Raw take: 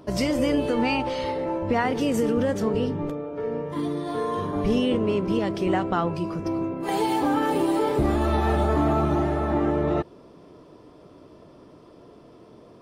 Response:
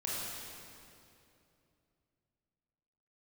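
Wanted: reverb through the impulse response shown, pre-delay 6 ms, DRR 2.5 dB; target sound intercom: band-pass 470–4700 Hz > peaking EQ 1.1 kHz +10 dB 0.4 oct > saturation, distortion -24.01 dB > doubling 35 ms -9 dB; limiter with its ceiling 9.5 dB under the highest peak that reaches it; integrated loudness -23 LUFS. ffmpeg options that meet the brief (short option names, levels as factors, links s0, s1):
-filter_complex "[0:a]alimiter=limit=0.0841:level=0:latency=1,asplit=2[s0][s1];[1:a]atrim=start_sample=2205,adelay=6[s2];[s1][s2]afir=irnorm=-1:irlink=0,volume=0.473[s3];[s0][s3]amix=inputs=2:normalize=0,highpass=470,lowpass=4700,equalizer=f=1100:t=o:w=0.4:g=10,asoftclip=threshold=0.133,asplit=2[s4][s5];[s5]adelay=35,volume=0.355[s6];[s4][s6]amix=inputs=2:normalize=0,volume=2.11"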